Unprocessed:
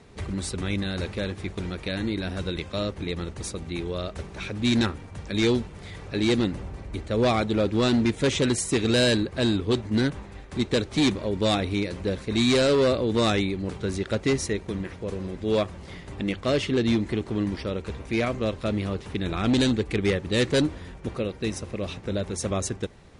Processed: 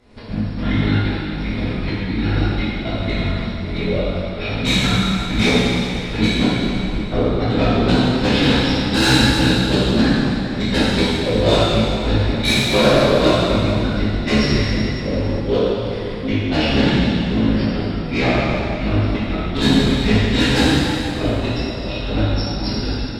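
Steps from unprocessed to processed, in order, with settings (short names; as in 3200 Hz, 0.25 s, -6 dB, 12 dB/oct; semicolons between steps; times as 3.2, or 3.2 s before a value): step gate "xx.x..xx" 158 bpm -24 dB; gate -50 dBFS, range -6 dB; formant-preserving pitch shift -11 st; in parallel at -10 dB: sine folder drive 11 dB, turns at -8 dBFS; on the sum: reverb RT60 2.7 s, pre-delay 4 ms, DRR -10.5 dB; gain -6.5 dB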